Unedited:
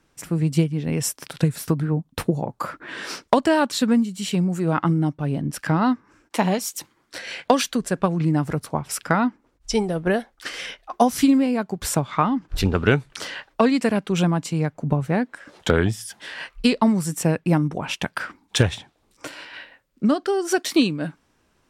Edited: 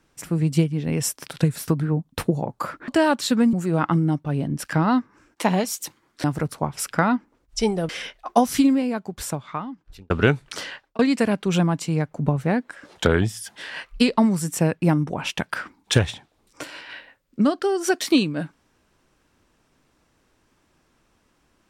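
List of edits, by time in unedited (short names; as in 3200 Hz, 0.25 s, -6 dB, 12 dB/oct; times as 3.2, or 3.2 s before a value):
2.88–3.39 cut
4.04–4.47 cut
7.18–8.36 cut
10.01–10.53 cut
11.12–12.74 fade out
13.27–13.63 fade out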